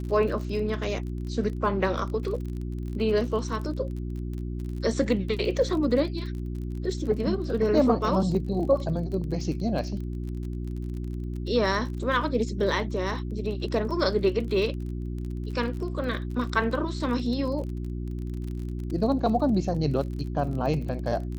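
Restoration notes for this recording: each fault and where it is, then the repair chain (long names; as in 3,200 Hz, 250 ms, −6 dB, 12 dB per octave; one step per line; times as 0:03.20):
surface crackle 32 per second −34 dBFS
mains hum 60 Hz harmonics 6 −32 dBFS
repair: click removal
hum removal 60 Hz, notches 6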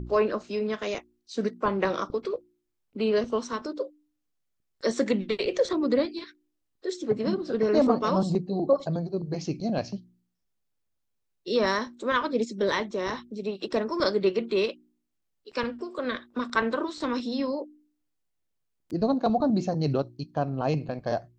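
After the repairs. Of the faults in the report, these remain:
none of them is left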